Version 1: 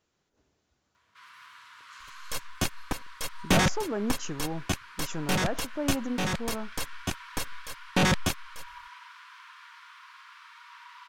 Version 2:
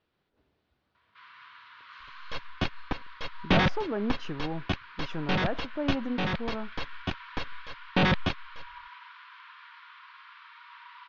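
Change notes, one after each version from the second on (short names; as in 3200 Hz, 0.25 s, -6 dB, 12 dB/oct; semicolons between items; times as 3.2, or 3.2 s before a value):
master: add inverse Chebyshev low-pass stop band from 7700 Hz, stop band 40 dB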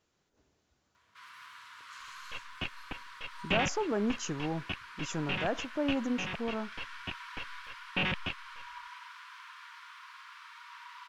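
second sound: add ladder low-pass 3000 Hz, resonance 70%; master: remove inverse Chebyshev low-pass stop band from 7700 Hz, stop band 40 dB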